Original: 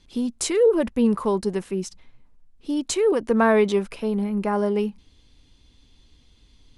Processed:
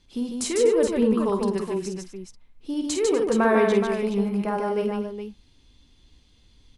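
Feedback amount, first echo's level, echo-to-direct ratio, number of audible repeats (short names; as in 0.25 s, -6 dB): no steady repeat, -7.0 dB, -0.5 dB, 4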